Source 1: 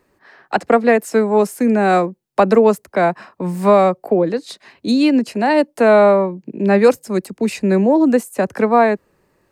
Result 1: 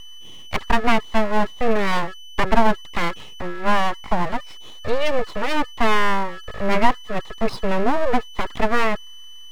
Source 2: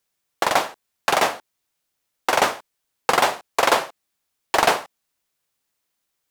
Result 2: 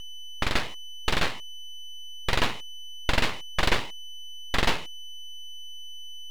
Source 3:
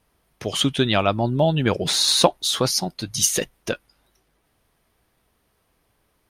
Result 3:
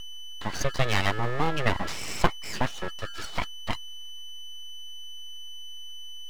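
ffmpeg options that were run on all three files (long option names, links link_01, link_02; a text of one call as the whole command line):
ffmpeg -i in.wav -af "aeval=exprs='val(0)+0.0224*sin(2*PI*1500*n/s)':channel_layout=same,highpass=frequency=100:width=0.5412,highpass=frequency=100:width=1.3066,equalizer=frequency=130:width_type=q:width=4:gain=-5,equalizer=frequency=230:width_type=q:width=4:gain=5,equalizer=frequency=450:width_type=q:width=4:gain=4,equalizer=frequency=800:width_type=q:width=4:gain=-8,equalizer=frequency=1400:width_type=q:width=4:gain=4,equalizer=frequency=2400:width_type=q:width=4:gain=7,lowpass=frequency=3000:width=0.5412,lowpass=frequency=3000:width=1.3066,aeval=exprs='abs(val(0))':channel_layout=same,volume=-4dB" out.wav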